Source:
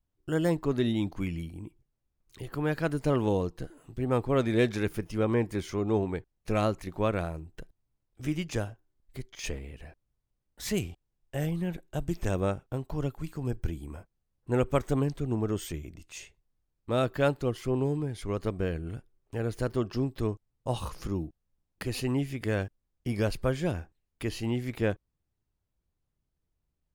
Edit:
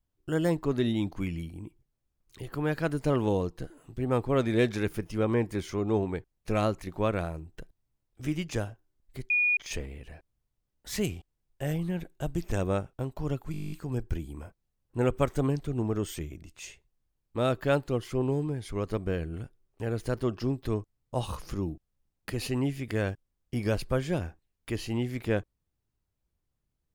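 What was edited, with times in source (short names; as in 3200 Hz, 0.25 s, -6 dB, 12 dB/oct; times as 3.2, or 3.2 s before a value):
9.3 add tone 2450 Hz -21.5 dBFS 0.27 s
13.25 stutter 0.02 s, 11 plays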